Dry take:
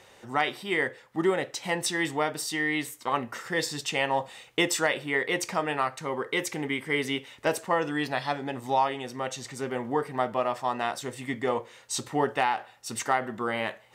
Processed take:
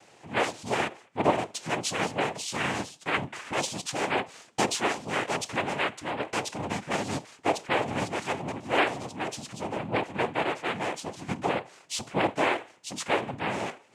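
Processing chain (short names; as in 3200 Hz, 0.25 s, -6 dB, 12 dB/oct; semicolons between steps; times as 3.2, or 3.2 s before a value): bell 2600 Hz -8 dB 0.52 oct; noise vocoder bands 4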